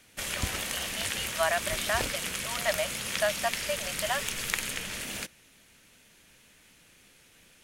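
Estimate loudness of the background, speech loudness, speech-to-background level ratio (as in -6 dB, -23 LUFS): -32.0 LUFS, -33.0 LUFS, -1.0 dB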